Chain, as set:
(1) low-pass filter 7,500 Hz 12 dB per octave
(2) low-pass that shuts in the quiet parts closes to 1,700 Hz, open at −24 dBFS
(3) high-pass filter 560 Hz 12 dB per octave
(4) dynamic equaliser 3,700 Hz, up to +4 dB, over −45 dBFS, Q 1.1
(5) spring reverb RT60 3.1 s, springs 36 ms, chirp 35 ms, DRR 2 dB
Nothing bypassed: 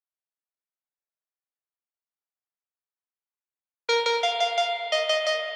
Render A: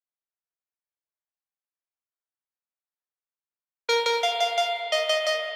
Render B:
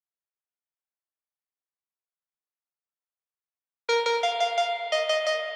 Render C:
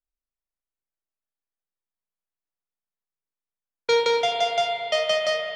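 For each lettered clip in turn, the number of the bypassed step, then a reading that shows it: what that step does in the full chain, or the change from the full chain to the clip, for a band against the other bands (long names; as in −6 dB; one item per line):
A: 1, 8 kHz band +2.0 dB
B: 4, 4 kHz band −2.5 dB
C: 3, 500 Hz band +3.0 dB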